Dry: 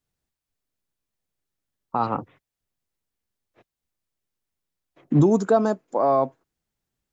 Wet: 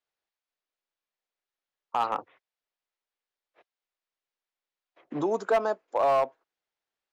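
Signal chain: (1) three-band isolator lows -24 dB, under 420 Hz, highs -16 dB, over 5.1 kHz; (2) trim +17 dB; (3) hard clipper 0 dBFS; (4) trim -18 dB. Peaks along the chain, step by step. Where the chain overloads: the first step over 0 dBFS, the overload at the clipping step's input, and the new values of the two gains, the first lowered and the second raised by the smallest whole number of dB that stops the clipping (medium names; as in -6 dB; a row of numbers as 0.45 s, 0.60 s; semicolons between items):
-10.5 dBFS, +6.5 dBFS, 0.0 dBFS, -18.0 dBFS; step 2, 6.5 dB; step 2 +10 dB, step 4 -11 dB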